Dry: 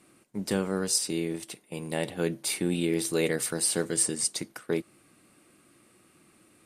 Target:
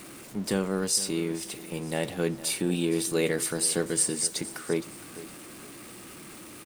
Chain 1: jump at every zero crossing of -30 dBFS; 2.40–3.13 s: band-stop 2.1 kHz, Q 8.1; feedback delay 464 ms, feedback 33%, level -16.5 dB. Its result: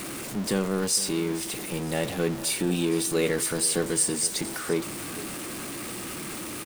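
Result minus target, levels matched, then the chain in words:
jump at every zero crossing: distortion +9 dB
jump at every zero crossing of -40.5 dBFS; 2.40–3.13 s: band-stop 2.1 kHz, Q 8.1; feedback delay 464 ms, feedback 33%, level -16.5 dB

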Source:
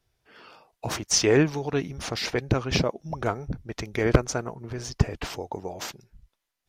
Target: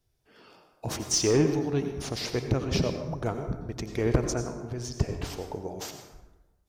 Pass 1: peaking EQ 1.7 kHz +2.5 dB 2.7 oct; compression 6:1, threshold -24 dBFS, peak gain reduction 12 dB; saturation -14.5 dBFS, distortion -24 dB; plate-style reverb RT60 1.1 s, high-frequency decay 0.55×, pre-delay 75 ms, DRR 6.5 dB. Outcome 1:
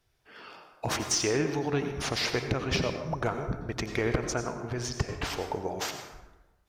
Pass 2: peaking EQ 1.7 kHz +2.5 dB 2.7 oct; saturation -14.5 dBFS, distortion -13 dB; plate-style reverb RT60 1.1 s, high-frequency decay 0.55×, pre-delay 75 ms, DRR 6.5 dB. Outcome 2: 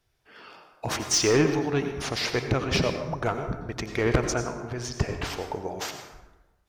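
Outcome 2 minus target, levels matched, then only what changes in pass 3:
2 kHz band +7.0 dB
change: peaking EQ 1.7 kHz -8 dB 2.7 oct

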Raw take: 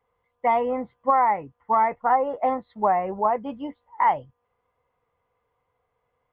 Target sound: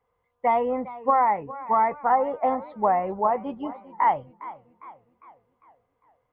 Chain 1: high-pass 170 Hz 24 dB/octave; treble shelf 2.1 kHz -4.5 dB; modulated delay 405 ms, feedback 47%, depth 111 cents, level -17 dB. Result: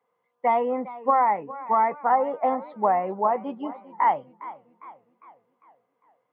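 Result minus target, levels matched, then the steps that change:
125 Hz band -2.5 dB
remove: high-pass 170 Hz 24 dB/octave

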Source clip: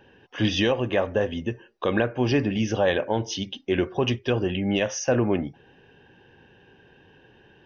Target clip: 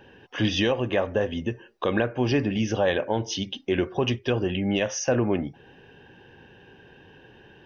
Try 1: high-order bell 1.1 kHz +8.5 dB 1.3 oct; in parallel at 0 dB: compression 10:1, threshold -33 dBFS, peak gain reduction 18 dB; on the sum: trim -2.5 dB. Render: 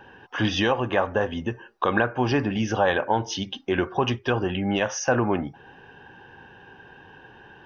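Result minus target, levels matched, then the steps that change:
1 kHz band +6.5 dB
remove: high-order bell 1.1 kHz +8.5 dB 1.3 oct

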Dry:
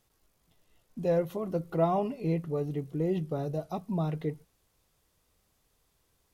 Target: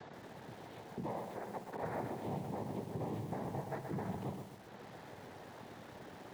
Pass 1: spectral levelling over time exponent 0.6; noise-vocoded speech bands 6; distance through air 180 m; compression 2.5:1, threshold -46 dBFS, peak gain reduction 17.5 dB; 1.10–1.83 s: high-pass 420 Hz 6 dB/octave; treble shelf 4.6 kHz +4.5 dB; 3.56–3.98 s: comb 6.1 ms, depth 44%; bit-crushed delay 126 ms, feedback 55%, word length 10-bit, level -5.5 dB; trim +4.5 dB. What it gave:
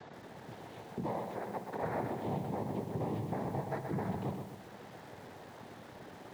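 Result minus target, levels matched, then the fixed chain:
compression: peak gain reduction -4 dB
spectral levelling over time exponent 0.6; noise-vocoded speech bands 6; distance through air 180 m; compression 2.5:1, threshold -52.5 dBFS, peak gain reduction 21.5 dB; 1.10–1.83 s: high-pass 420 Hz 6 dB/octave; treble shelf 4.6 kHz +4.5 dB; 3.56–3.98 s: comb 6.1 ms, depth 44%; bit-crushed delay 126 ms, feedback 55%, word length 10-bit, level -5.5 dB; trim +4.5 dB

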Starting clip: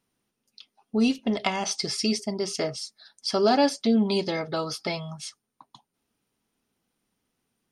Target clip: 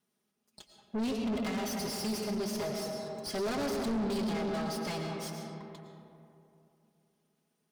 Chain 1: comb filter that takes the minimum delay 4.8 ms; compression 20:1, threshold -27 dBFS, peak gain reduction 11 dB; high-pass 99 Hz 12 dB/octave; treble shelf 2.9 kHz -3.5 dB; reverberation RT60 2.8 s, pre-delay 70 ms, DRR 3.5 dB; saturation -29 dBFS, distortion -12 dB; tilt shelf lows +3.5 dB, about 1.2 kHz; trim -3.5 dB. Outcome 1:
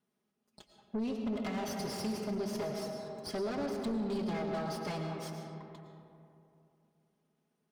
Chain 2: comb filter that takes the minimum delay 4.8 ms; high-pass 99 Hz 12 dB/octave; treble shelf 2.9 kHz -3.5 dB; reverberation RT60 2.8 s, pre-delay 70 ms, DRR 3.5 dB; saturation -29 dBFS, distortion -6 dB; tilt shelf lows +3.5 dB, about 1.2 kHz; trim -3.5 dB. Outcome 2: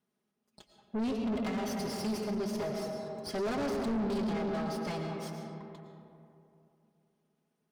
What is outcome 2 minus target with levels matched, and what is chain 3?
8 kHz band -5.5 dB
comb filter that takes the minimum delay 4.8 ms; high-pass 99 Hz 12 dB/octave; treble shelf 2.9 kHz +5.5 dB; reverberation RT60 2.8 s, pre-delay 70 ms, DRR 3.5 dB; saturation -29 dBFS, distortion -6 dB; tilt shelf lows +3.5 dB, about 1.2 kHz; trim -3.5 dB

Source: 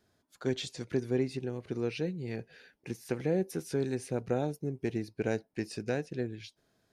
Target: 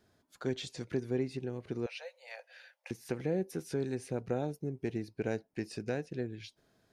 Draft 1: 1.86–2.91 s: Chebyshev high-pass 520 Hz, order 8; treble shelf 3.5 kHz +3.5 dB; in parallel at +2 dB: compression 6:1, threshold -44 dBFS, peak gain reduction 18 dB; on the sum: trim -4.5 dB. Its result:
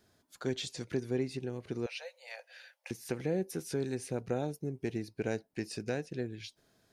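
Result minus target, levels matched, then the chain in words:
8 kHz band +5.0 dB
1.86–2.91 s: Chebyshev high-pass 520 Hz, order 8; treble shelf 3.5 kHz -3 dB; in parallel at +2 dB: compression 6:1, threshold -44 dBFS, peak gain reduction 18 dB; on the sum: trim -4.5 dB

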